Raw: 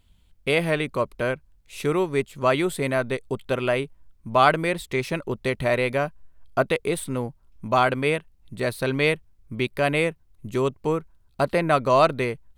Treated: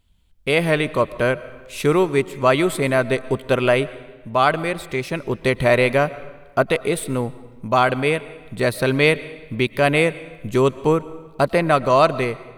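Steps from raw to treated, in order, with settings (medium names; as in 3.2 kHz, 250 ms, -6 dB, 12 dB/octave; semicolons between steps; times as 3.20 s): level rider; on a send: reverberation RT60 1.3 s, pre-delay 80 ms, DRR 17 dB; on the sum: trim -2.5 dB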